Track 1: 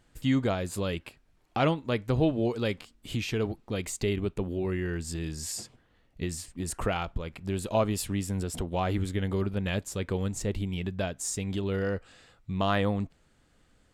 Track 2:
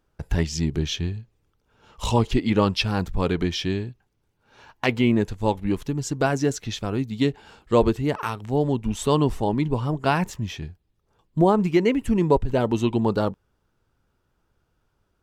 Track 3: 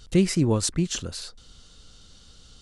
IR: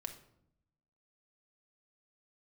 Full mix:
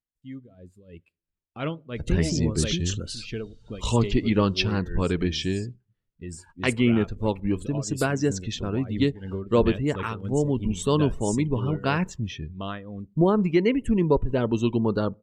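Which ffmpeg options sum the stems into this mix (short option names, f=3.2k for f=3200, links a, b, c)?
-filter_complex "[0:a]dynaudnorm=f=130:g=17:m=13.5dB,tremolo=f=3:d=0.75,volume=-15dB,asplit=2[a][b];[b]volume=-9.5dB[c];[1:a]adelay=1800,volume=-1.5dB,asplit=2[d][e];[e]volume=-19dB[f];[2:a]acompressor=threshold=-26dB:ratio=6,adelay=1950,volume=1dB[g];[3:a]atrim=start_sample=2205[h];[c][f]amix=inputs=2:normalize=0[i];[i][h]afir=irnorm=-1:irlink=0[j];[a][d][g][j]amix=inputs=4:normalize=0,afftdn=nr=19:nf=-43,equalizer=f=790:t=o:w=0.6:g=-8"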